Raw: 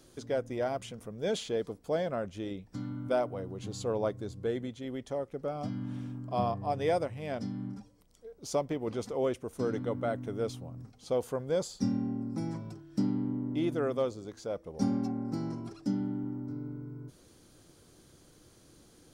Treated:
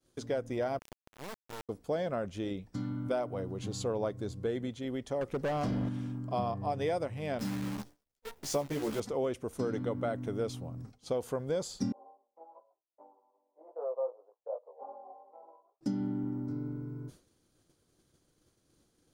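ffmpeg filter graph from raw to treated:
-filter_complex "[0:a]asettb=1/sr,asplit=3[a][b][c];[a]atrim=end=0.794[d];[b]atrim=start=0.79:end=1.69,asetpts=PTS-STARTPTS,afade=t=in:d=0.004:c=qsin,afade=t=out:st=0.896:d=0.004:c=qsin,lowpass=f=2.4k:w=0.5412,lowpass=f=2.4k:w=1.3066,acompressor=threshold=-46dB:ratio=3:attack=3.2:release=140:knee=1:detection=peak,acrusher=bits=4:dc=4:mix=0:aa=0.000001[e];[c]atrim=start=1.686[f];[d][e]acrossfade=d=0.004:c1=hsin:c2=qsin[g];[g][f]acrossfade=d=0.004:c1=qsin:c2=hsin,asettb=1/sr,asplit=3[h][i][j];[h]atrim=end=5.214[k];[i]atrim=start=5.21:end=5.89,asetpts=PTS-STARTPTS,afade=t=in:d=0.004:c=qsin,afade=t=out:st=0.676:d=0.004:c=qsin,acontrast=72,asoftclip=type=hard:threshold=-29.5dB[l];[j]atrim=start=5.886[m];[k][l]acrossfade=d=0.004:c1=hsin:c2=qsin[n];[n][m]acrossfade=d=0.004:c1=qsin:c2=hsin,asettb=1/sr,asplit=3[o][p][q];[o]atrim=end=7.394[r];[p]atrim=start=7.39:end=9,asetpts=PTS-STARTPTS,afade=t=in:d=0.004:c=qsin,afade=t=out:st=1.606:d=0.004:c=qsin,bandreject=f=60:t=h:w=6,bandreject=f=120:t=h:w=6,bandreject=f=180:t=h:w=6,bandreject=f=240:t=h:w=6,bandreject=f=300:t=h:w=6,acrusher=bits=8:dc=4:mix=0:aa=0.000001,asplit=2[s][t];[t]adelay=14,volume=-3dB[u];[s][u]amix=inputs=2:normalize=0,atrim=end_sample=71001[v];[q]atrim=start=8.996[w];[r][v]acrossfade=d=0.004:c1=hsin:c2=qsin[x];[x][w]acrossfade=d=0.004:c1=qsin:c2=hsin,asettb=1/sr,asplit=3[y][z][aa];[y]atrim=end=11.924[ab];[z]atrim=start=11.92:end=15.81,asetpts=PTS-STARTPTS,afade=t=in:d=0.004:c=qsin,afade=t=out:st=3.886:d=0.004:c=qsin,asuperpass=centerf=710:order=8:qfactor=1.3,flanger=delay=16.5:depth=2.7:speed=2.6[ac];[aa]atrim=start=15.806[ad];[ab][ac]acrossfade=d=0.004:c1=hsin:c2=qsin[ae];[ae][ad]acrossfade=d=0.004:c1=qsin:c2=hsin,agate=range=-33dB:threshold=-48dB:ratio=3:detection=peak,acompressor=threshold=-31dB:ratio=4,volume=2dB"

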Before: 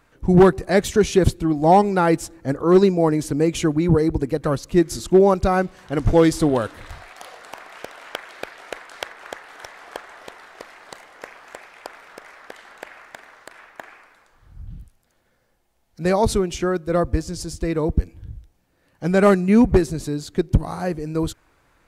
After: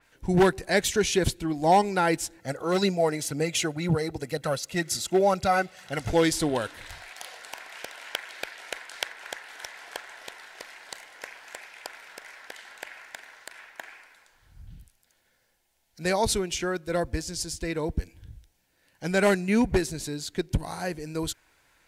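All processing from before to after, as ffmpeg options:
-filter_complex "[0:a]asettb=1/sr,asplit=3[a][b][c];[a]atrim=end=2.394[d];[b]atrim=start=2.39:end=6.1,asetpts=PTS-STARTPTS,afade=t=in:d=0.004:c=qsin,afade=t=out:st=3.706:d=0.004:c=qsin,highpass=130,aecho=1:1:1.5:0.45,atrim=end_sample=163611,aphaser=in_gain=1:out_gain=1:delay=3:decay=0.34:speed=2:type=triangular[e];[c]atrim=start=6.096[f];[d][e]acrossfade=d=0.004:c1=hsin:c2=qsin[g];[g][f]acrossfade=d=0.004:c1=qsin:c2=hsin,tiltshelf=f=1.1k:g=-6.5,bandreject=f=1.2k:w=5.4,adynamicequalizer=threshold=0.0112:dfrequency=4200:dqfactor=0.7:tfrequency=4200:tqfactor=0.7:attack=5:release=100:ratio=0.375:range=1.5:mode=cutabove:tftype=highshelf,volume=-3dB"

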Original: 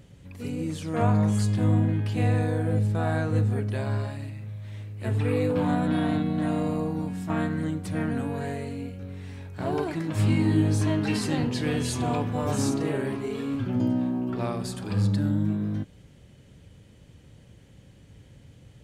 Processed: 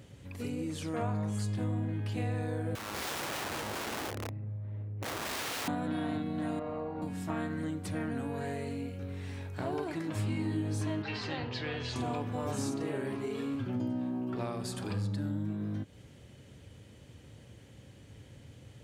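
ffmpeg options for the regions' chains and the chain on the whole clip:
-filter_complex "[0:a]asettb=1/sr,asplit=3[a][b][c];[a]atrim=end=2.754[d];[b]atrim=start=2.75:end=5.68,asetpts=PTS-STARTPTS,afade=t=in:d=0.004:c=qsin,afade=t=out:st=2.926:d=0.004:c=qsin,adynamicsmooth=sensitivity=2:basefreq=710,aeval=exprs='(mod(31.6*val(0)+1,2)-1)/31.6':c=same[e];[c]atrim=start=5.676[f];[d][e]acrossfade=d=0.004:c1=hsin:c2=qsin[g];[g][f]acrossfade=d=0.004:c1=qsin:c2=hsin,asettb=1/sr,asplit=3[h][i][j];[h]atrim=end=6.594[k];[i]atrim=start=6.59:end=7.02,asetpts=PTS-STARTPTS,afade=t=in:d=0.004:c=qsin,afade=t=out:st=0.426:d=0.004:c=qsin,lowpass=2k,equalizer=f=190:w=1.6:g=-14.5,aecho=1:1:5:0.37,atrim=end_sample=18963[l];[j]atrim=start=7.016[m];[k][l]acrossfade=d=0.004:c1=hsin:c2=qsin[n];[n][m]acrossfade=d=0.004:c1=qsin:c2=hsin,asettb=1/sr,asplit=3[o][p][q];[o]atrim=end=11.024[r];[p]atrim=start=11.02:end=11.96,asetpts=PTS-STARTPTS,afade=t=in:d=0.004:c=qsin,afade=t=out:st=0.936:d=0.004:c=qsin,lowpass=f=4.7k:w=0.5412,lowpass=f=4.7k:w=1.3066,equalizer=f=240:t=o:w=1.5:g=-11.5[s];[q]atrim=start=11.956[t];[r][s]acrossfade=d=0.004:c1=hsin:c2=qsin[u];[u][t]acrossfade=d=0.004:c1=qsin:c2=hsin,highpass=76,equalizer=f=170:t=o:w=0.47:g=-6,acompressor=threshold=-36dB:ratio=2.5,volume=1dB"

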